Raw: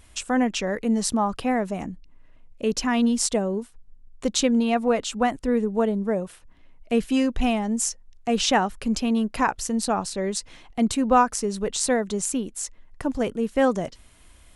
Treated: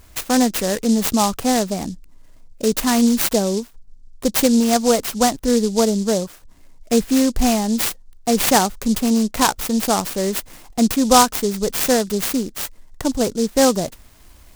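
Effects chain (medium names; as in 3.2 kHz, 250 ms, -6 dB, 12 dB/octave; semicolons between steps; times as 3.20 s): delay time shaken by noise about 5.7 kHz, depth 0.09 ms; trim +5.5 dB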